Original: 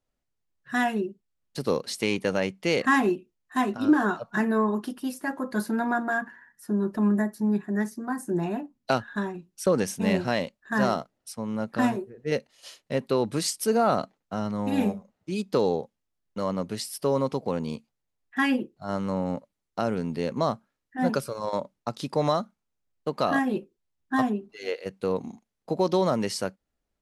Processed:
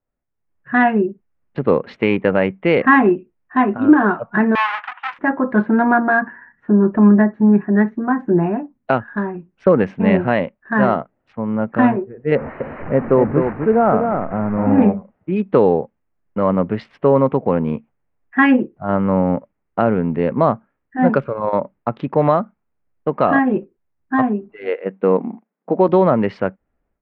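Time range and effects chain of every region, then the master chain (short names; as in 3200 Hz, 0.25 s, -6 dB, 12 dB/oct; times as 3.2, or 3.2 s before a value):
4.55–5.19 half-waves squared off + steep high-pass 910 Hz
12.35–14.82 delta modulation 32 kbps, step -31 dBFS + running mean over 13 samples + echo 0.252 s -5.5 dB
24.68–25.89 brick-wall FIR high-pass 160 Hz + mismatched tape noise reduction decoder only
whole clip: Wiener smoothing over 9 samples; LPF 2400 Hz 24 dB/oct; AGC gain up to 14 dB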